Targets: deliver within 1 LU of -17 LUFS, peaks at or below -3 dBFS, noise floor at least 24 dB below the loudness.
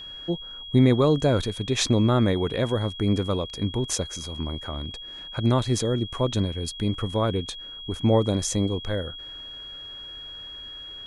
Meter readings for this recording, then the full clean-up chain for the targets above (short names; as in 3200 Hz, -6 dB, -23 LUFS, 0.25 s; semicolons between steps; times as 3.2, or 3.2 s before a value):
steady tone 3300 Hz; tone level -37 dBFS; loudness -25.0 LUFS; peak -8.0 dBFS; loudness target -17.0 LUFS
-> notch 3300 Hz, Q 30; gain +8 dB; limiter -3 dBFS